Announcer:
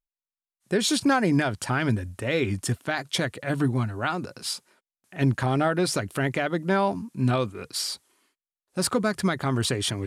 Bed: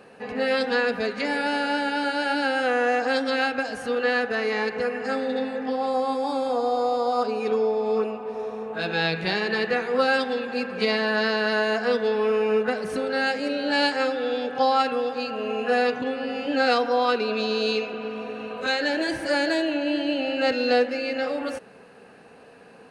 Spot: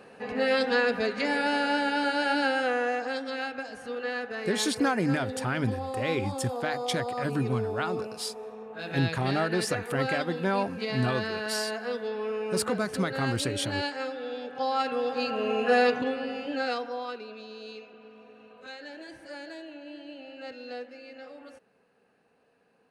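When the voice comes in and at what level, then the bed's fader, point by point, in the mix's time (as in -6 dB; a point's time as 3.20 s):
3.75 s, -4.5 dB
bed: 2.44 s -1.5 dB
3.21 s -9.5 dB
14.56 s -9.5 dB
15.24 s 0 dB
15.94 s 0 dB
17.43 s -18.5 dB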